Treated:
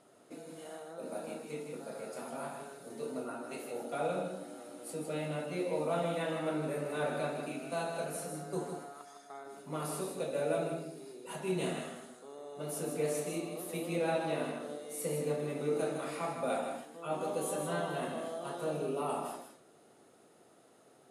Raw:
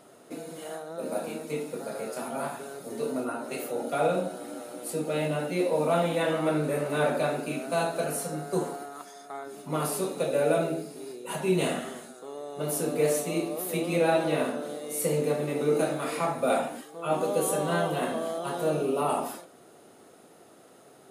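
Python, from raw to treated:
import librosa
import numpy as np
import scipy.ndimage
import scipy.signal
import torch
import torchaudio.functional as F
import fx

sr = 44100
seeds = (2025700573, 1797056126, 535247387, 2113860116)

y = scipy.signal.sosfilt(scipy.signal.butter(4, 12000.0, 'lowpass', fs=sr, output='sos'), x)
y = y + 10.0 ** (-6.5 / 20.0) * np.pad(y, (int(157 * sr / 1000.0), 0))[:len(y)]
y = y * librosa.db_to_amplitude(-9.0)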